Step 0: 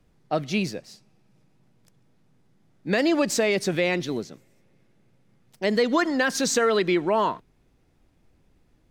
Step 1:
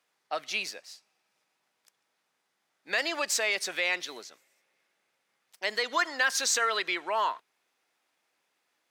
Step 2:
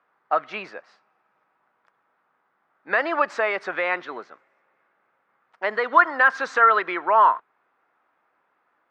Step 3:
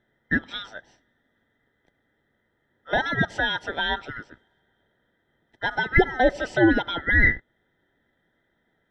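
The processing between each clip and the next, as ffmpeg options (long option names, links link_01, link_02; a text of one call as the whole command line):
ffmpeg -i in.wav -af "highpass=1000" out.wav
ffmpeg -i in.wav -af "lowpass=frequency=1300:width_type=q:width=2.2,volume=7.5dB" out.wav
ffmpeg -i in.wav -af "afftfilt=real='real(if(lt(b,960),b+48*(1-2*mod(floor(b/48),2)),b),0)':imag='imag(if(lt(b,960),b+48*(1-2*mod(floor(b/48),2)),b),0)':win_size=2048:overlap=0.75,volume=-1.5dB" out.wav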